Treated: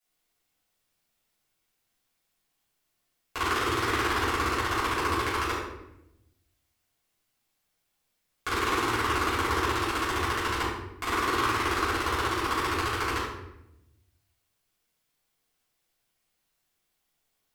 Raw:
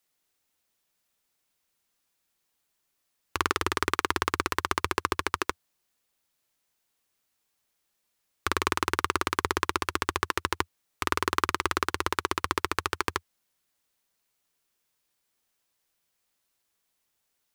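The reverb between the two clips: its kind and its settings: simulated room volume 280 m³, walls mixed, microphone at 5.5 m; trim -12 dB

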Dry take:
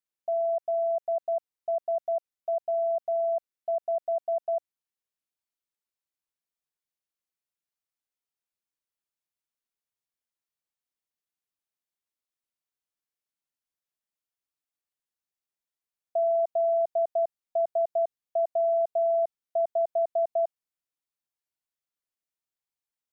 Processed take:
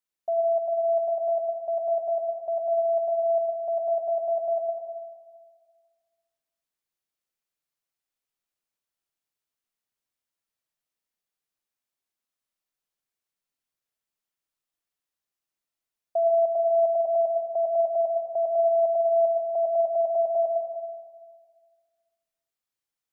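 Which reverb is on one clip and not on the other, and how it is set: algorithmic reverb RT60 1.7 s, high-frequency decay 0.75×, pre-delay 65 ms, DRR 2.5 dB; trim +1.5 dB

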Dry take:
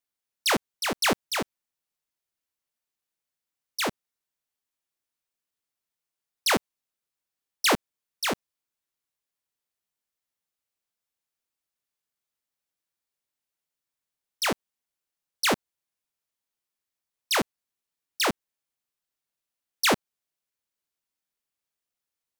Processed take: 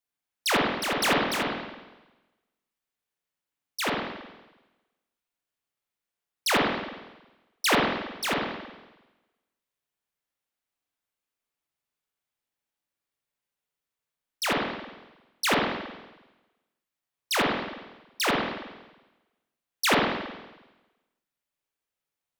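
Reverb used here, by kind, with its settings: spring tank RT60 1.1 s, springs 45/52 ms, chirp 50 ms, DRR -3 dB; trim -2.5 dB

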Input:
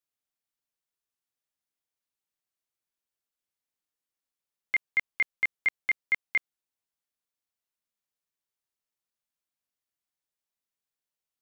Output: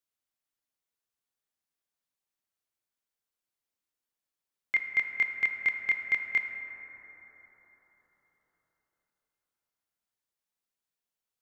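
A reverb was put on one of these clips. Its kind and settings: plate-style reverb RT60 4.8 s, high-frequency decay 0.25×, DRR 4.5 dB; trim -1 dB

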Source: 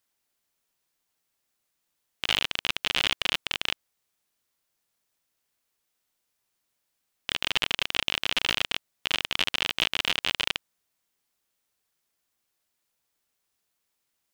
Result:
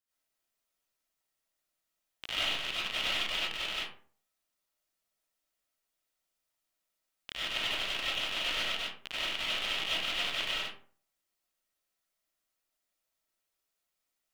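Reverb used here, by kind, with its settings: algorithmic reverb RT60 0.46 s, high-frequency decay 0.55×, pre-delay 55 ms, DRR -9.5 dB; trim -14.5 dB

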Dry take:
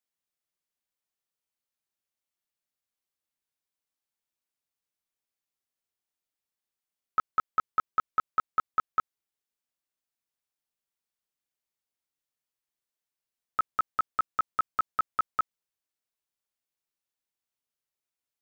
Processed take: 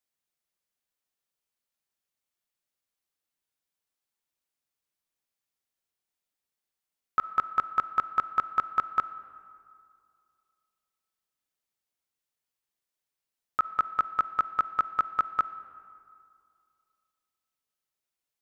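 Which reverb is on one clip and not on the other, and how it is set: algorithmic reverb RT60 2.4 s, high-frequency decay 0.55×, pre-delay 10 ms, DRR 14 dB; trim +1.5 dB

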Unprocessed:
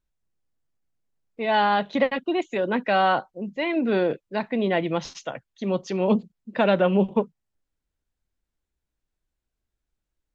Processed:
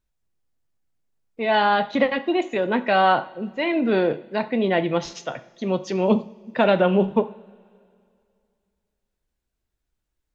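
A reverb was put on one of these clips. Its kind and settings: two-slope reverb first 0.47 s, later 2.4 s, from -19 dB, DRR 10 dB; trim +2 dB

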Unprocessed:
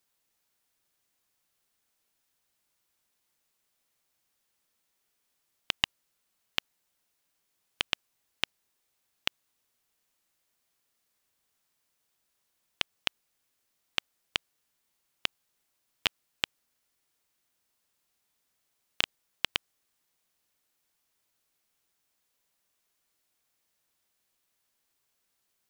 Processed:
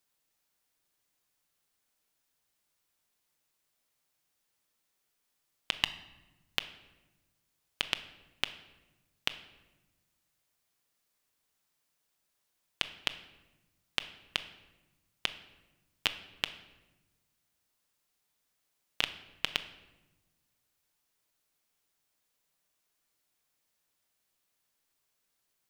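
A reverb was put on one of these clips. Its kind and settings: simulated room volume 580 m³, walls mixed, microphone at 0.43 m; trim -2 dB

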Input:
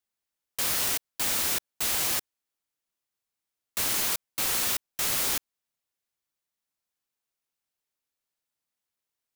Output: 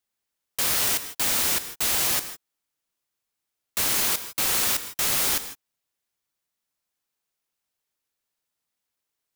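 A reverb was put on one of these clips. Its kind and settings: gated-style reverb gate 180 ms rising, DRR 11.5 dB; trim +3.5 dB

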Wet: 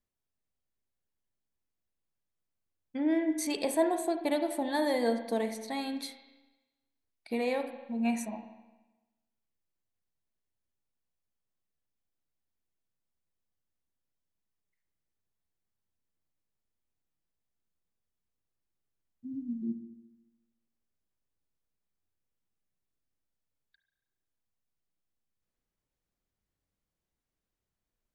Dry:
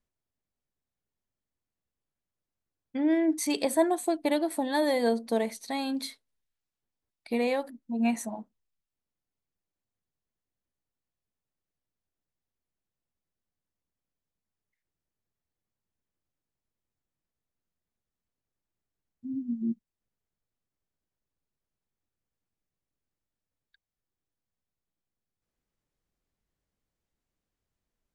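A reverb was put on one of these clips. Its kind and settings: spring tank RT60 1.1 s, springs 32/43 ms, chirp 40 ms, DRR 7 dB; trim -3.5 dB

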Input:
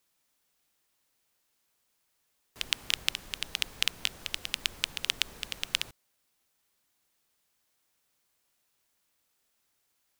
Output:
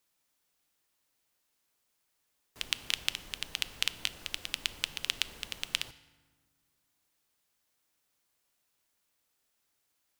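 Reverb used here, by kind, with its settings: FDN reverb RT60 1.5 s, low-frequency decay 1.45×, high-frequency decay 0.6×, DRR 14.5 dB; trim -2.5 dB

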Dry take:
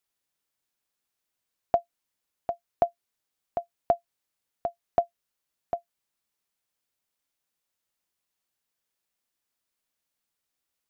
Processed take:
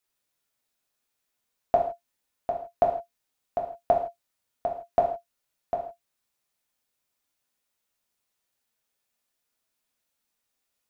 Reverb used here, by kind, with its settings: gated-style reverb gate 190 ms falling, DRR -1 dB

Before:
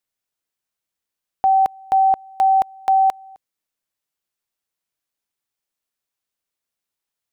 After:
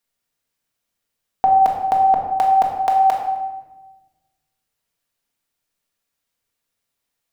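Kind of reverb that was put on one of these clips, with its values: simulated room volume 710 m³, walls mixed, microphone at 1.7 m; trim +3 dB

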